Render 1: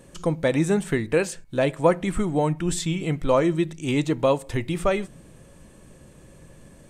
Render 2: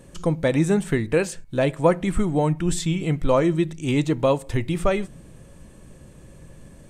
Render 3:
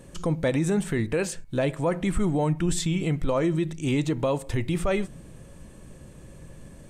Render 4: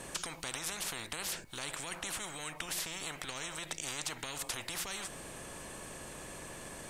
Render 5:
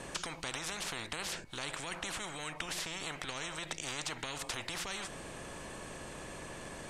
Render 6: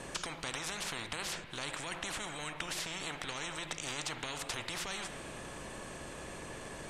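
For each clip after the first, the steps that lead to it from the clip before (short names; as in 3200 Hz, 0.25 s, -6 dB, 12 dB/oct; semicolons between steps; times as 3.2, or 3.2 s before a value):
low shelf 170 Hz +5.5 dB
limiter -16 dBFS, peak gain reduction 10 dB
spectral compressor 10:1; gain -3 dB
air absorption 53 m; gain +2 dB
reverb RT60 2.3 s, pre-delay 47 ms, DRR 9 dB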